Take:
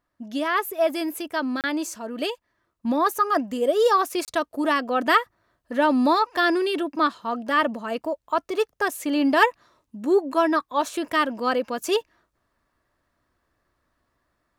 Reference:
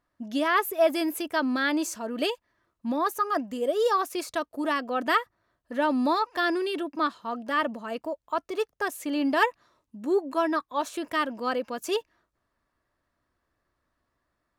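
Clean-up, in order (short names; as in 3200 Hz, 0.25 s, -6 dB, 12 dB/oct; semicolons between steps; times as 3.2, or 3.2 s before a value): interpolate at 1.61/4.25, 28 ms; gain 0 dB, from 2.85 s -5 dB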